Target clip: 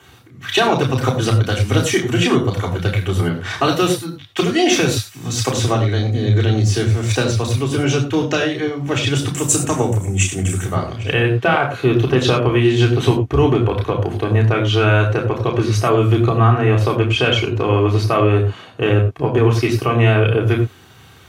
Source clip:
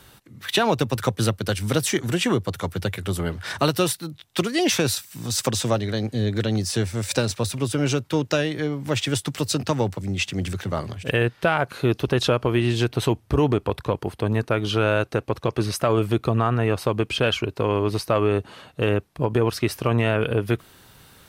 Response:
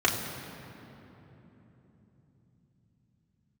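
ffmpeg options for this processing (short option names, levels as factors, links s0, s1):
-filter_complex "[0:a]asettb=1/sr,asplit=3[s0][s1][s2];[s0]atrim=end=9.344[s3];[s1]atrim=start=9.34:end=10.65,asetpts=PTS-STARTPTS,afade=t=in:d=0.004:c=qsin,afade=t=out:st=1.306:d=0.004:c=qsin,highshelf=f=6000:t=q:w=3:g=11[s4];[s2]atrim=start=10.646[s5];[s3][s4]acrossfade=d=0.004:c1=hsin:c2=qsin[s6];[s6][s5]acrossfade=d=0.004:c1=qsin:c2=hsin[s7];[1:a]atrim=start_sample=2205,afade=t=out:st=0.17:d=0.01,atrim=end_sample=7938[s8];[s7][s8]afir=irnorm=-1:irlink=0,volume=0.447"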